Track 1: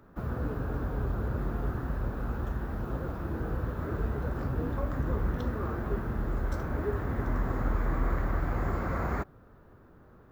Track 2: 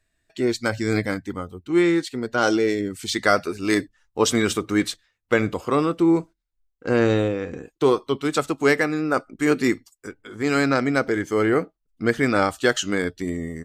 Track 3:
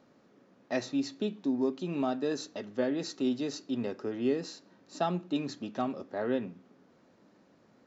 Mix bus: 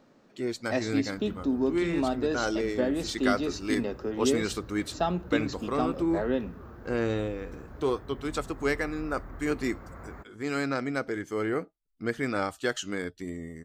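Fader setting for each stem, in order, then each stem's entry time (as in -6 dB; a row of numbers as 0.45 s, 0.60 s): -13.5 dB, -9.5 dB, +2.5 dB; 1.00 s, 0.00 s, 0.00 s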